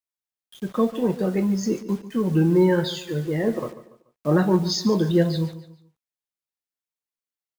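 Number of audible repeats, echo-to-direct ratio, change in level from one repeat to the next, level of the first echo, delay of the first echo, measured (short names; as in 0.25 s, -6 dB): 3, -14.5 dB, -8.5 dB, -15.0 dB, 0.144 s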